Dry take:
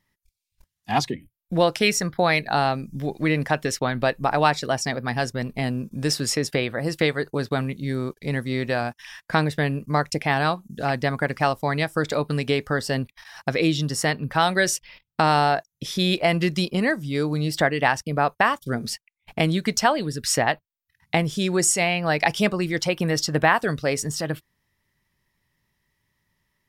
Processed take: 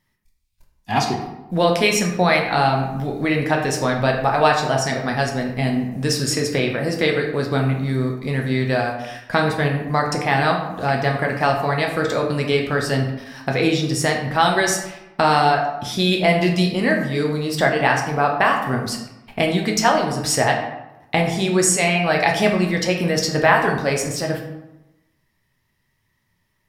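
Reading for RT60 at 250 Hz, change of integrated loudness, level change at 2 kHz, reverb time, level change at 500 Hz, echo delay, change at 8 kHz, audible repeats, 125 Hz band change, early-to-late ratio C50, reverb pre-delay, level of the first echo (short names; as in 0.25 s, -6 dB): 1.1 s, +3.5 dB, +3.5 dB, 0.95 s, +4.5 dB, none, +2.5 dB, none, +3.5 dB, 5.5 dB, 8 ms, none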